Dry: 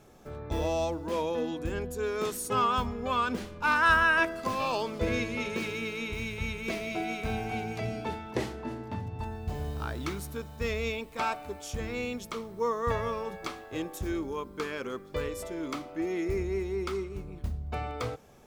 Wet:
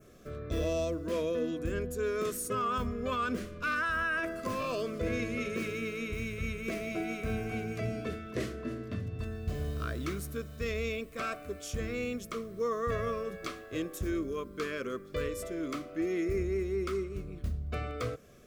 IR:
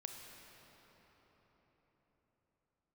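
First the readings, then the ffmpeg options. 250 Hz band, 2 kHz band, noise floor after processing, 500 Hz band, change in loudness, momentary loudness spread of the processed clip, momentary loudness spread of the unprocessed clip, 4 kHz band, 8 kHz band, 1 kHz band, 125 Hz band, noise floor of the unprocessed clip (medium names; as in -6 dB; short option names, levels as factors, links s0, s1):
-0.5 dB, -6.0 dB, -48 dBFS, -1.0 dB, -3.0 dB, 7 LU, 10 LU, -5.5 dB, -1.5 dB, -7.0 dB, -0.5 dB, -48 dBFS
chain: -af "asuperstop=centerf=860:order=4:qfactor=2.2,alimiter=limit=0.0668:level=0:latency=1:release=14,adynamicequalizer=threshold=0.002:dfrequency=3800:dqfactor=1.1:tfrequency=3800:tqfactor=1.1:attack=5:release=100:ratio=0.375:range=4:mode=cutabove:tftype=bell"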